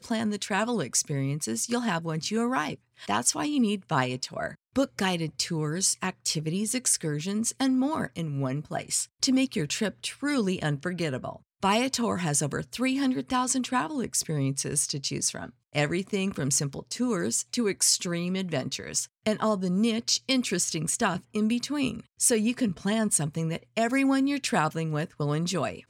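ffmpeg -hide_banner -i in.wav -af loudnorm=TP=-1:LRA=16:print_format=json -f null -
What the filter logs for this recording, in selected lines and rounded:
"input_i" : "-27.4",
"input_tp" : "-9.7",
"input_lra" : "1.8",
"input_thresh" : "-37.4",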